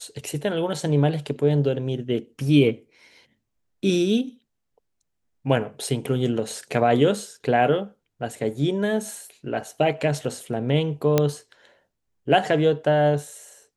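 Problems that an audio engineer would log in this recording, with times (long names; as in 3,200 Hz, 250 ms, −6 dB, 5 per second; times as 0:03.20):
0:11.18: click −5 dBFS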